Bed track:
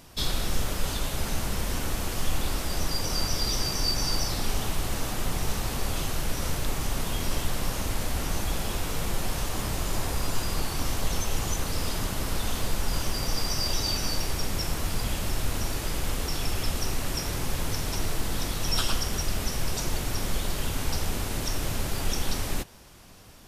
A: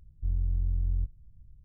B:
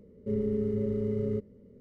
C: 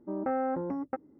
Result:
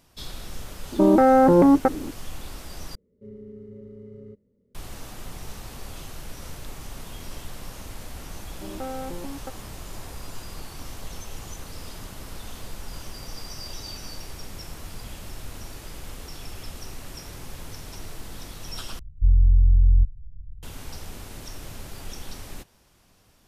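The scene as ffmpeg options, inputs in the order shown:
-filter_complex "[3:a]asplit=2[a][b];[0:a]volume=-9.5dB[c];[a]alimiter=level_in=32.5dB:limit=-1dB:release=50:level=0:latency=1[d];[1:a]aemphasis=mode=reproduction:type=riaa[e];[c]asplit=3[f][g][h];[f]atrim=end=2.954[i];[2:a]atrim=end=1.8,asetpts=PTS-STARTPTS,volume=-13dB[j];[g]atrim=start=4.746:end=18.994[k];[e]atrim=end=1.64,asetpts=PTS-STARTPTS,volume=-5dB[l];[h]atrim=start=20.626[m];[d]atrim=end=1.19,asetpts=PTS-STARTPTS,volume=-8dB,afade=t=in:d=0.004:c=hsin,afade=t=out:st=1.186:d=0.004:c=hsin,adelay=920[n];[b]atrim=end=1.19,asetpts=PTS-STARTPTS,volume=-4dB,afade=t=in:d=0.004:c=hsin,afade=t=out:st=1.186:d=0.004:c=hsin,adelay=8540[o];[i][j]acrossfade=d=0.004:c1=hsin:c2=hsin[p];[p][k]acrossfade=d=0.004:c1=hsin:c2=hsin[q];[q][l]acrossfade=d=0.004:c1=hsin:c2=hsin[r];[r][m]acrossfade=d=0.004:c1=hsin:c2=hsin[s];[s][n][o]amix=inputs=3:normalize=0"

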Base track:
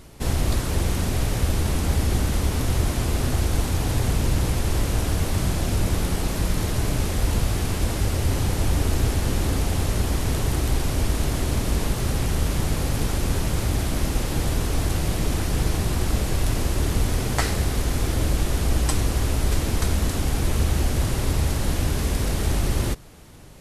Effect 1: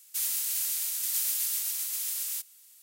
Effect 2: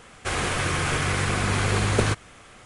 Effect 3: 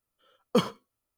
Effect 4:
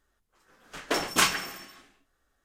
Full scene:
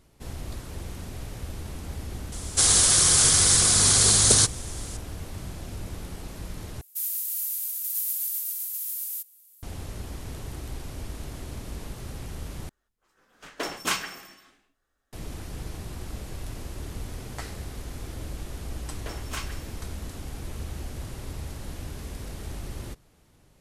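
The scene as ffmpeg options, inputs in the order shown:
-filter_complex "[4:a]asplit=2[a][b];[0:a]volume=-14dB[c];[2:a]aexciter=amount=12.2:drive=3:freq=3.7k[d];[1:a]equalizer=f=13k:w=0.76:g=15[e];[c]asplit=3[f][g][h];[f]atrim=end=6.814[i];[e]atrim=end=2.82,asetpts=PTS-STARTPTS,volume=-11.5dB[j];[g]atrim=start=9.626:end=12.694[k];[a]atrim=end=2.44,asetpts=PTS-STARTPTS,volume=-4.5dB[l];[h]atrim=start=15.126[m];[d]atrim=end=2.65,asetpts=PTS-STARTPTS,volume=-4.5dB,afade=t=in:d=0.004:c=hsin,afade=t=out:st=2.646:d=0.004:c=hsin,adelay=2320[n];[b]atrim=end=2.44,asetpts=PTS-STARTPTS,volume=-13.5dB,afade=t=in:d=0.004:c=hsin,afade=t=out:st=2.436:d=0.004:c=hsin,adelay=18150[o];[i][j]acrossfade=d=0.004:c1=hsin:c2=hsin[p];[p][k]acrossfade=d=0.004:c1=hsin:c2=hsin[q];[q][l]acrossfade=d=0.004:c1=hsin:c2=hsin[r];[r][m]acrossfade=d=0.004:c1=hsin:c2=hsin[s];[s][n][o]amix=inputs=3:normalize=0"

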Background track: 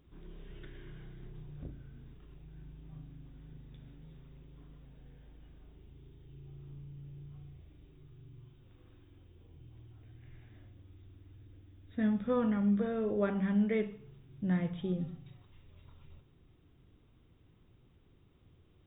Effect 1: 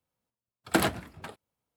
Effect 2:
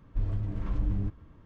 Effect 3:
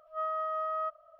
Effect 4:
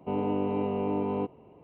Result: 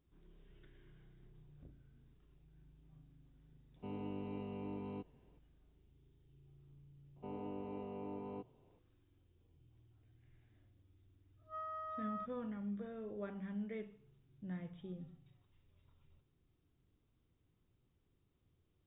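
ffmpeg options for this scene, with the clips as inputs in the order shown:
-filter_complex "[4:a]asplit=2[a][b];[0:a]volume=-13.5dB[c];[a]equalizer=f=650:w=0.46:g=-10.5[d];[3:a]highpass=710[e];[d]atrim=end=1.63,asetpts=PTS-STARTPTS,volume=-9dB,afade=t=in:d=0.004:c=hsin,afade=t=out:st=1.626:d=0.004:c=hsin,adelay=3760[f];[b]atrim=end=1.63,asetpts=PTS-STARTPTS,volume=-16.5dB,afade=t=in:d=0.004:c=hsin,afade=t=out:st=1.626:d=0.004:c=hsin,adelay=7160[g];[e]atrim=end=1.19,asetpts=PTS-STARTPTS,volume=-10.5dB,afade=t=in:d=0.1,afade=t=out:st=1.09:d=0.1,adelay=11360[h];[c][f][g][h]amix=inputs=4:normalize=0"

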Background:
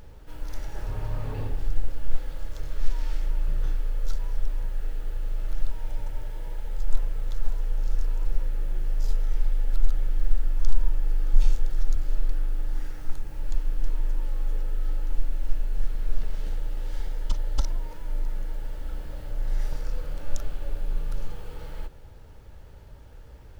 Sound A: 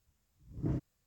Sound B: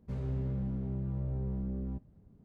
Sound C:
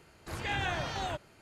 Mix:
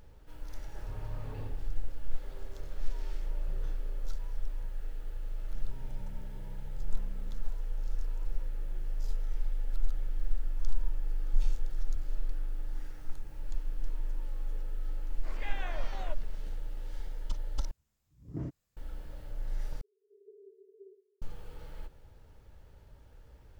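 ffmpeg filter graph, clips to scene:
-filter_complex "[2:a]asplit=2[a][b];[3:a]asplit=2[c][d];[0:a]volume=-8.5dB[e];[a]highpass=f=400:w=0.5412,highpass=f=400:w=1.3066[f];[c]highpass=230,equalizer=f=240:t=q:w=4:g=5,equalizer=f=570:t=q:w=4:g=9,equalizer=f=1.1k:t=q:w=4:g=4,equalizer=f=2.1k:t=q:w=4:g=5,equalizer=f=3.9k:t=q:w=4:g=-3,equalizer=f=6.6k:t=q:w=4:g=-4,lowpass=f=7.6k:w=0.5412,lowpass=f=7.6k:w=1.3066[g];[d]asuperpass=centerf=410:order=20:qfactor=5.6[h];[e]asplit=3[i][j][k];[i]atrim=end=17.714[l];[1:a]atrim=end=1.06,asetpts=PTS-STARTPTS,volume=-3.5dB[m];[j]atrim=start=18.766:end=19.814[n];[h]atrim=end=1.41,asetpts=PTS-STARTPTS,volume=-3.5dB[o];[k]atrim=start=21.216[p];[f]atrim=end=2.44,asetpts=PTS-STARTPTS,volume=-6dB,afade=t=in:d=0.004:c=hsin,afade=t=out:st=2.436:d=0.004:c=hsin,adelay=2130[q];[b]atrim=end=2.44,asetpts=PTS-STARTPTS,volume=-16dB,afade=t=in:d=0.004:c=hsin,afade=t=out:st=2.436:d=0.004:c=hsin,adelay=240345S[r];[g]atrim=end=1.41,asetpts=PTS-STARTPTS,volume=-11dB,afade=t=in:d=0.004:c=hsin,afade=t=out:st=1.406:d=0.004:c=hsin,adelay=14970[s];[l][m]acrossfade=d=0.004:c1=hsin:c2=hsin[t];[t][n]acrossfade=d=0.004:c1=hsin:c2=hsin[u];[u][o]acrossfade=d=0.004:c1=hsin:c2=hsin[v];[v][p]acrossfade=d=0.004:c1=hsin:c2=hsin[w];[w][q][r][s]amix=inputs=4:normalize=0"

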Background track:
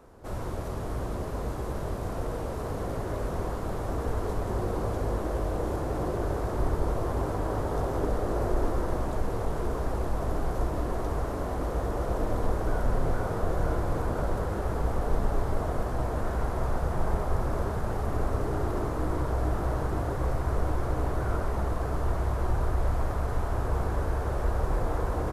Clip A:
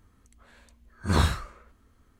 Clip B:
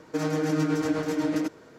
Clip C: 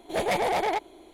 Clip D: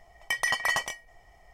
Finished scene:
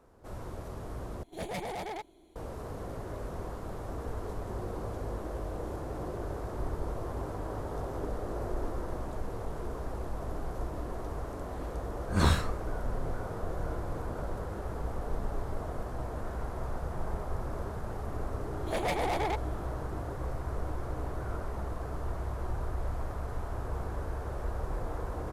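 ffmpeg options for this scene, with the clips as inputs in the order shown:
-filter_complex "[3:a]asplit=2[a][b];[0:a]volume=-7.5dB[c];[a]bass=f=250:g=12,treble=f=4k:g=4[d];[b]aeval=exprs='if(lt(val(0),0),0.708*val(0),val(0))':c=same[e];[c]asplit=2[f][g];[f]atrim=end=1.234[h];[d]atrim=end=1.13,asetpts=PTS-STARTPTS,volume=-13dB[i];[g]atrim=start=2.356[j];[1:a]atrim=end=2.19,asetpts=PTS-STARTPTS,volume=-2.5dB,afade=t=in:d=0.004:c=hsin,afade=t=out:st=2.186:d=0.004:c=hsin,adelay=11070[k];[e]atrim=end=1.13,asetpts=PTS-STARTPTS,volume=-4.5dB,afade=t=in:d=0.004:c=hsin,afade=t=out:st=1.126:d=0.004:c=hsin,adelay=18570[l];[h][i]acrossfade=d=0.004:c1=hsin:c2=hsin[m];[m][j]acrossfade=d=0.004:c1=hsin:c2=hsin[n];[n][k][l]amix=inputs=3:normalize=0"

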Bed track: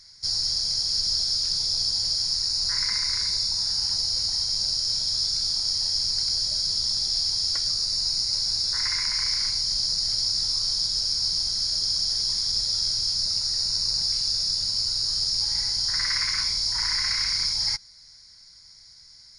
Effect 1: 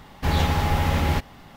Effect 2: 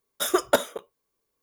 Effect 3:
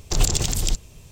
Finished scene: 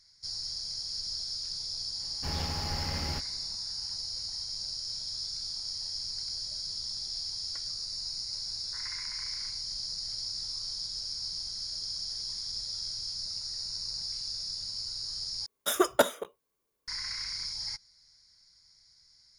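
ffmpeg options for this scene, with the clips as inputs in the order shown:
-filter_complex "[0:a]volume=-11.5dB,asplit=2[a][b];[a]atrim=end=15.464[c];[2:a]atrim=end=1.42,asetpts=PTS-STARTPTS,volume=-2.5dB[d];[b]atrim=start=16.876[e];[1:a]atrim=end=1.56,asetpts=PTS-STARTPTS,volume=-14dB,afade=t=in:d=0.004:c=hsin,afade=t=out:st=1.556:d=0.004:c=hsin,adelay=2000[f];[c][d]acrossfade=d=0.004:c1=hsin:c2=hsin[g];[g][e]acrossfade=d=0.004:c1=hsin:c2=hsin[h];[h][f]amix=inputs=2:normalize=0"

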